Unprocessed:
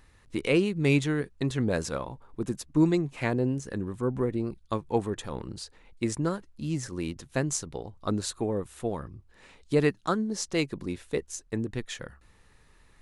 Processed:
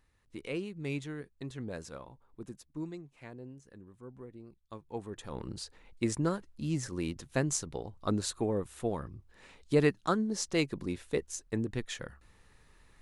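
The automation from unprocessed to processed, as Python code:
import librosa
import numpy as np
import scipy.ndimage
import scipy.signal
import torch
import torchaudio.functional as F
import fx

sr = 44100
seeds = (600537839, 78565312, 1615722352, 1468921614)

y = fx.gain(x, sr, db=fx.line((2.41, -13.0), (3.09, -20.0), (4.47, -20.0), (5.1, -11.0), (5.46, -2.0)))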